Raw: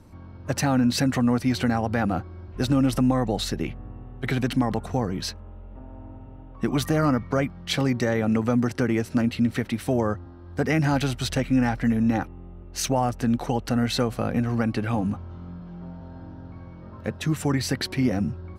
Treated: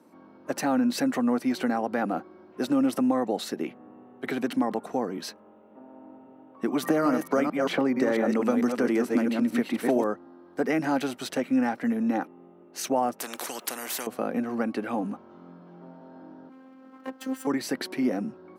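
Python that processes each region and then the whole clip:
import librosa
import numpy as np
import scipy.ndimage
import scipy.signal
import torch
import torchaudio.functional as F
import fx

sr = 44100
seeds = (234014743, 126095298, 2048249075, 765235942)

y = fx.chain(x, sr, fx.reverse_delay(ms=223, wet_db=-5.0),
    fx.band_squash(depth_pct=100), at=(6.83, 10.04))
y = fx.chain(y, sr, fx.bass_treble(bass_db=2, treble_db=9),
    fx.spectral_comp(ratio=4.0), at=(13.2, 14.07))
y = fx.chain(y, sr, fx.lower_of_two(delay_ms=0.66),
    fx.robotise(hz=262.0), at=(16.49, 17.47))
y = scipy.signal.sosfilt(scipy.signal.butter(4, 240.0, 'highpass', fs=sr, output='sos'), y)
y = fx.peak_eq(y, sr, hz=4400.0, db=-7.0, octaves=2.7)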